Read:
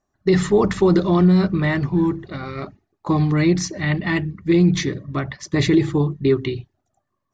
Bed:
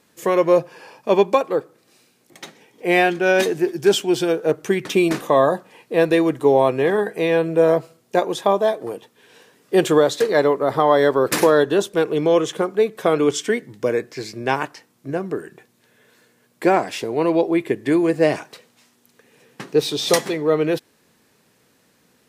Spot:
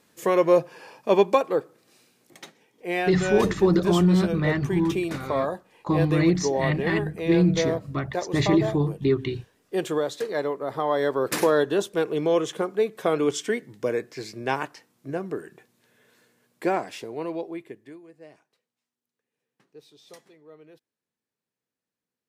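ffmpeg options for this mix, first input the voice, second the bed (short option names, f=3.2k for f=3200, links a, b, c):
-filter_complex "[0:a]adelay=2800,volume=-4.5dB[a];[1:a]volume=2dB,afade=t=out:st=2.32:d=0.21:silence=0.421697,afade=t=in:st=10.71:d=0.8:silence=0.562341,afade=t=out:st=16.23:d=1.77:silence=0.0530884[b];[a][b]amix=inputs=2:normalize=0"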